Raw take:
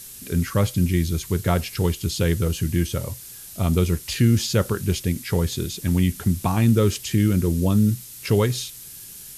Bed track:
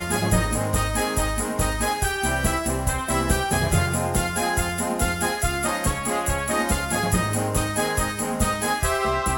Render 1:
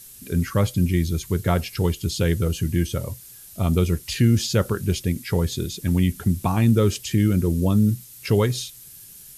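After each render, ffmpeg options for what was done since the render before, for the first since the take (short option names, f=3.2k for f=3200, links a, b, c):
-af "afftdn=nr=6:nf=-40"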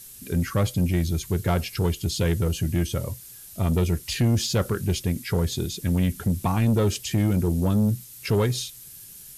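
-af "asoftclip=type=tanh:threshold=-15dB"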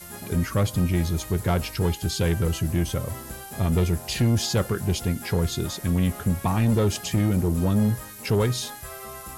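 -filter_complex "[1:a]volume=-17dB[a];[0:a][a]amix=inputs=2:normalize=0"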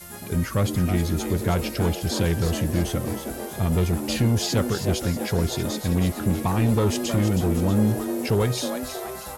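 -filter_complex "[0:a]asplit=7[a][b][c][d][e][f][g];[b]adelay=319,afreqshift=130,volume=-8.5dB[h];[c]adelay=638,afreqshift=260,volume=-14.3dB[i];[d]adelay=957,afreqshift=390,volume=-20.2dB[j];[e]adelay=1276,afreqshift=520,volume=-26dB[k];[f]adelay=1595,afreqshift=650,volume=-31.9dB[l];[g]adelay=1914,afreqshift=780,volume=-37.7dB[m];[a][h][i][j][k][l][m]amix=inputs=7:normalize=0"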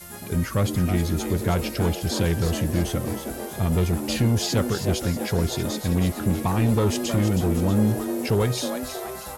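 -af anull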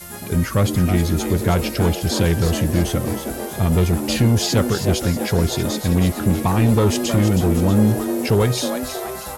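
-af "volume=5dB"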